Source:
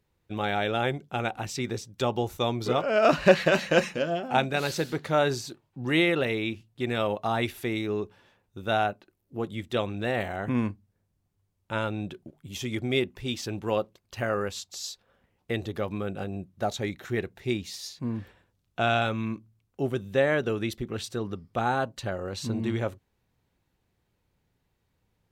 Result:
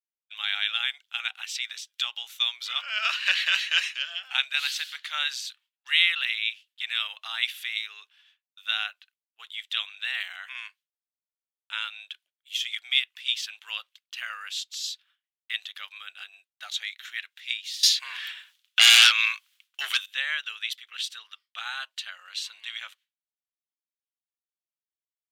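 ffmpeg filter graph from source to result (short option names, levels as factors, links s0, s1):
-filter_complex "[0:a]asettb=1/sr,asplit=3[s0][s1][s2];[s0]atrim=end=17.834[s3];[s1]atrim=start=17.83:end=20.06,asetpts=PTS-STARTPTS,afade=t=in:d=0.004:c=qsin,afade=t=out:st=2.226:d=0.004:c=qsin,highpass=500,aeval=exprs='0.224*sin(PI/2*5.01*val(0)/0.224)':c=same[s4];[s2]atrim=start=20.056[s5];[s3][s4]acrossfade=d=0.004:c1=hsin:c2=qsin[s6];[s6][s5]acrossfade=d=0.004:c1=qsin:c2=hsin,highpass=f=1500:w=0.5412,highpass=f=1500:w=1.3066,agate=range=0.0224:threshold=0.00112:ratio=3:detection=peak,equalizer=f=3200:w=1.8:g=12"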